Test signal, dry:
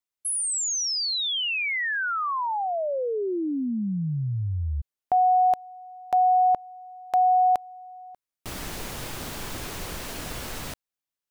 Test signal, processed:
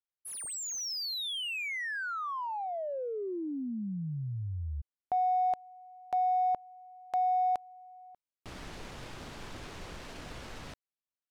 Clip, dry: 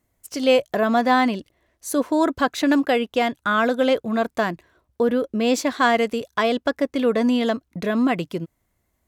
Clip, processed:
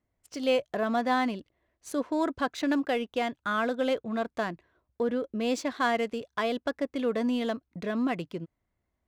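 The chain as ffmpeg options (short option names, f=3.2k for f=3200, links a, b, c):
-af "adynamicsmooth=sensitivity=7.5:basefreq=4.3k,volume=-8.5dB"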